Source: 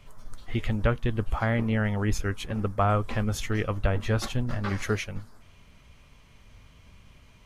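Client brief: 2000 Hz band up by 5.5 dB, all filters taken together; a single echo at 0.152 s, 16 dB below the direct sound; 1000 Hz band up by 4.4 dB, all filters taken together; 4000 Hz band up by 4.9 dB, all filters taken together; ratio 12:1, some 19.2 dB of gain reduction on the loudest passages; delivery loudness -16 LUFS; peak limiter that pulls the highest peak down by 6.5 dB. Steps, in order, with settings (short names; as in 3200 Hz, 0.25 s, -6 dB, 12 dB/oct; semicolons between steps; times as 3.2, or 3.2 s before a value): bell 1000 Hz +4.5 dB; bell 2000 Hz +4.5 dB; bell 4000 Hz +4.5 dB; compressor 12:1, threshold -37 dBFS; limiter -32 dBFS; echo 0.152 s -16 dB; gain +29 dB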